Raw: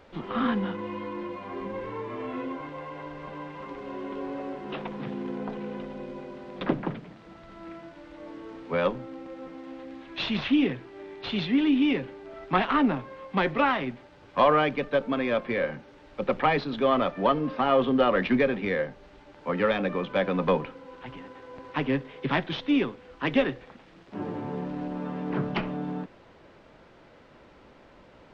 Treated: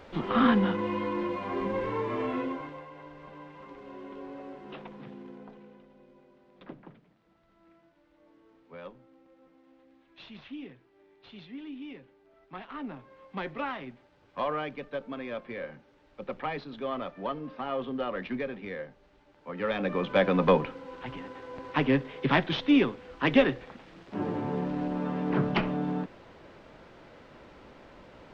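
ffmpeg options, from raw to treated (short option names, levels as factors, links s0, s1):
-af "volume=17.8,afade=t=out:st=2.2:d=0.67:silence=0.251189,afade=t=out:st=4.68:d=1.13:silence=0.281838,afade=t=in:st=12.66:d=0.58:silence=0.375837,afade=t=in:st=19.54:d=0.61:silence=0.237137"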